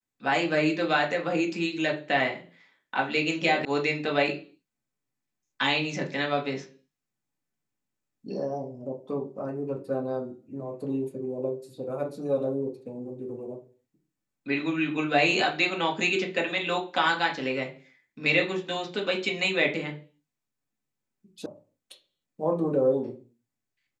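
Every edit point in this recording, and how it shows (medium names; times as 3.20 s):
3.65 s: sound stops dead
21.46 s: sound stops dead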